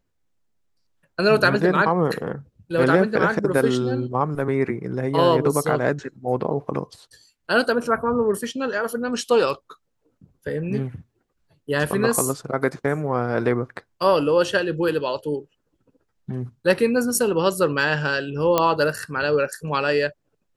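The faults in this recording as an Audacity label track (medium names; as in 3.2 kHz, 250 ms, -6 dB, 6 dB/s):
18.580000	18.580000	pop -4 dBFS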